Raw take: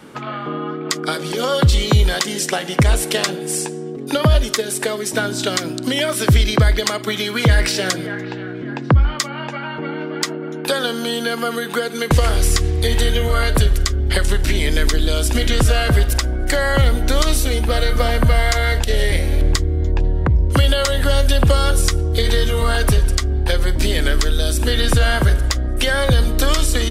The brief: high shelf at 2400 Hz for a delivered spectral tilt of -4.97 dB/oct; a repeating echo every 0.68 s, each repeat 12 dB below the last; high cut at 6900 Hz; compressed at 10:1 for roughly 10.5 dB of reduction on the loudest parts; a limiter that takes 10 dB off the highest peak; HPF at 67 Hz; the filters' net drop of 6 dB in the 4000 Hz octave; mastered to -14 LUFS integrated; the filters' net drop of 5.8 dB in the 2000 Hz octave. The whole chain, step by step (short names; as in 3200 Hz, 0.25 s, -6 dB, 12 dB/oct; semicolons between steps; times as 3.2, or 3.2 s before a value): HPF 67 Hz; LPF 6900 Hz; bell 2000 Hz -7.5 dB; high shelf 2400 Hz +4 dB; bell 4000 Hz -8.5 dB; compressor 10:1, threshold -20 dBFS; limiter -17.5 dBFS; feedback echo 0.68 s, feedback 25%, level -12 dB; gain +13 dB